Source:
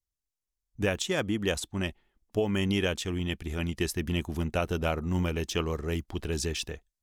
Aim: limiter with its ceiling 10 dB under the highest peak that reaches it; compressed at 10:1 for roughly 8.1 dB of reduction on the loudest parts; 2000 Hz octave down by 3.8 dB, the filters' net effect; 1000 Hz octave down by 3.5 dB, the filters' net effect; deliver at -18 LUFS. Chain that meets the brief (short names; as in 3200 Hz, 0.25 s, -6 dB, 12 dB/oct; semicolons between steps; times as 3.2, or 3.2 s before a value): bell 1000 Hz -4 dB; bell 2000 Hz -4 dB; compressor 10:1, threshold -32 dBFS; gain +24 dB; limiter -9 dBFS